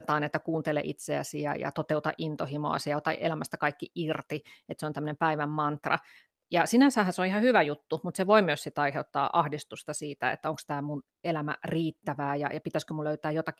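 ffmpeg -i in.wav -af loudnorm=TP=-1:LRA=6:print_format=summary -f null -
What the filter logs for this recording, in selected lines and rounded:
Input Integrated:    -30.3 LUFS
Input True Peak:      -9.1 dBTP
Input LRA:             5.7 LU
Input Threshold:     -40.4 LUFS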